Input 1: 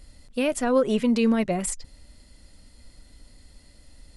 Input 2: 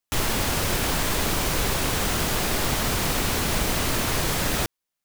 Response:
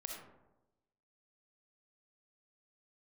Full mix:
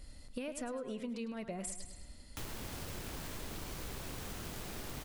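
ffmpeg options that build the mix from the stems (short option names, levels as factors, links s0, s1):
-filter_complex "[0:a]acompressor=threshold=0.0398:ratio=6,volume=0.708,asplit=2[s0][s1];[s1]volume=0.282[s2];[1:a]acrossover=split=450[s3][s4];[s4]acompressor=threshold=0.0282:ratio=2[s5];[s3][s5]amix=inputs=2:normalize=0,acrusher=bits=2:mode=log:mix=0:aa=0.000001,adelay=2250,volume=0.2[s6];[s2]aecho=0:1:104|208|312|416|520|624:1|0.42|0.176|0.0741|0.0311|0.0131[s7];[s0][s6][s7]amix=inputs=3:normalize=0,acompressor=threshold=0.01:ratio=3"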